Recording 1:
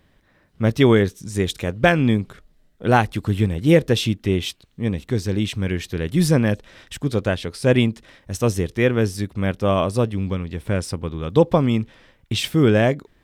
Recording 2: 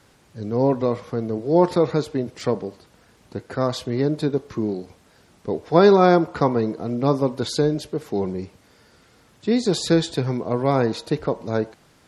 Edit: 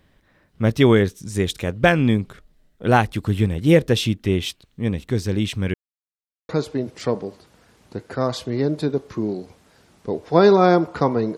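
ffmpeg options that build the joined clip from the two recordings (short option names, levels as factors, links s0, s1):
-filter_complex "[0:a]apad=whole_dur=11.37,atrim=end=11.37,asplit=2[s0][s1];[s0]atrim=end=5.74,asetpts=PTS-STARTPTS,afade=t=out:st=5.736:d=0.004:c=hsin[s2];[s1]atrim=start=5.74:end=6.49,asetpts=PTS-STARTPTS,volume=0[s3];[1:a]atrim=start=1.89:end=6.77,asetpts=PTS-STARTPTS,afade=t=in:d=0.004:c=hsin[s4];[s2][s3][s4]concat=n=3:v=0:a=1"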